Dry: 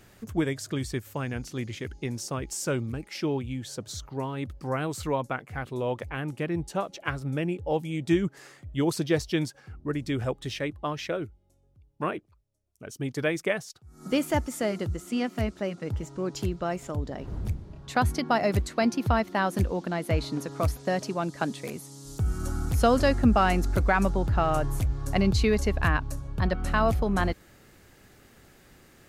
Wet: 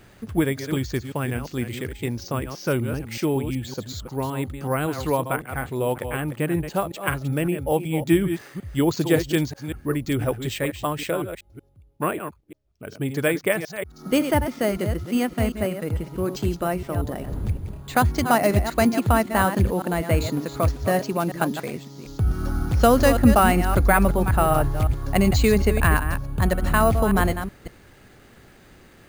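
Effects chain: reverse delay 0.187 s, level -9 dB; careless resampling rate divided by 4×, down filtered, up hold; gain +5 dB

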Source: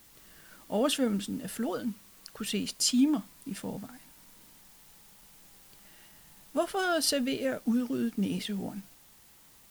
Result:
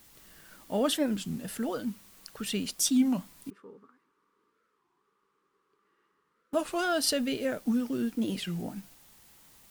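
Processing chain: 3.5–6.56 double band-pass 690 Hz, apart 1.5 oct; record warp 33 1/3 rpm, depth 250 cents

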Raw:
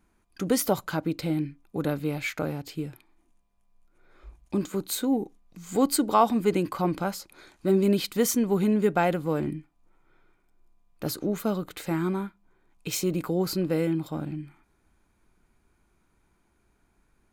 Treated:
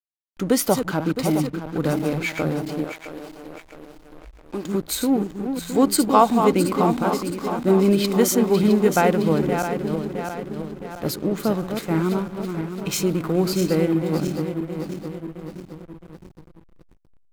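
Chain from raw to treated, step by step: regenerating reverse delay 0.332 s, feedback 74%, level -7 dB; backlash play -36.5 dBFS; 2.84–4.65 bell 150 Hz -14 dB 1.7 oct; gain +5 dB

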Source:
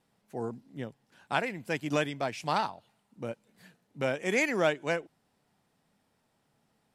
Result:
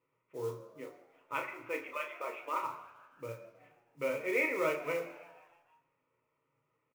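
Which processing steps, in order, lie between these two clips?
0.55–2.63 median-filter separation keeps percussive; LPF 2200 Hz 24 dB/oct; fixed phaser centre 1100 Hz, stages 8; doubler 35 ms -6.5 dB; frequency-shifting echo 0.157 s, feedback 61%, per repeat +86 Hz, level -20.5 dB; modulation noise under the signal 23 dB; notch 780 Hz, Q 12; reverb RT60 1.2 s, pre-delay 3 ms, DRR 4.5 dB; gain -1.5 dB

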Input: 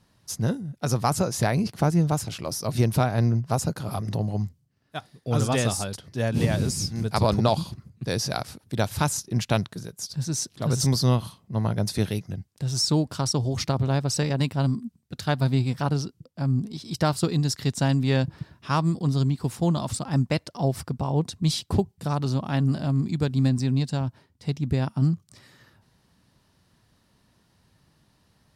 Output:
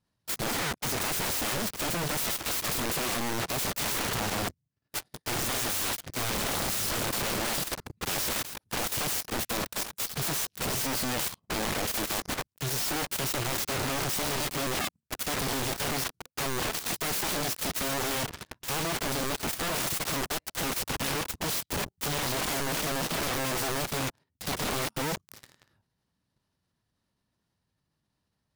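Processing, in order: sample leveller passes 5; wrapped overs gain 23.5 dB; level quantiser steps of 10 dB

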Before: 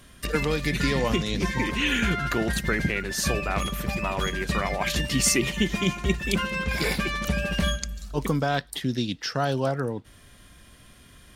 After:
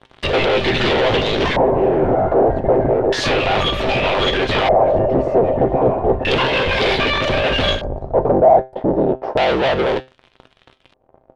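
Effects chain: cycle switcher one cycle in 3, inverted; band shelf 560 Hz +10 dB; sample leveller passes 5; resonator 130 Hz, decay 0.26 s, harmonics all, mix 60%; LFO low-pass square 0.32 Hz 690–3400 Hz; gain -3.5 dB

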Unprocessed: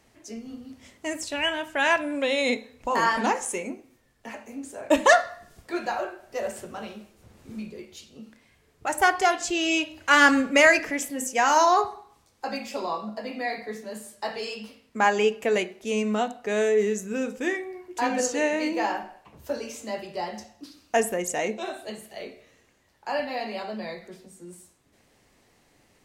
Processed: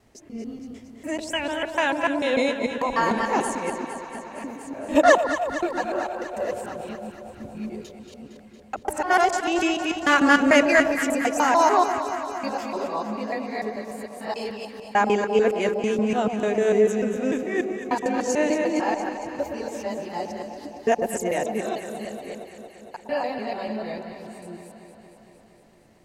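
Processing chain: local time reversal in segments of 0.148 s; tilt shelf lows +3.5 dB, about 1100 Hz; echo with dull and thin repeats by turns 0.115 s, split 980 Hz, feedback 84%, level -8 dB

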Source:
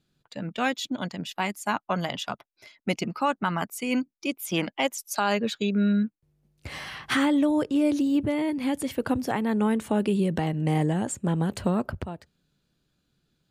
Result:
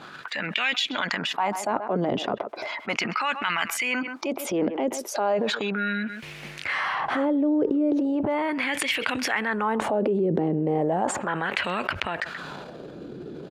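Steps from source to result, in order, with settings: 11.16–11.63 tone controls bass -6 dB, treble -8 dB; transient shaper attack -5 dB, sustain +10 dB; LFO band-pass sine 0.36 Hz 380–2500 Hz; speakerphone echo 0.13 s, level -24 dB; fast leveller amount 70%; gain +4.5 dB

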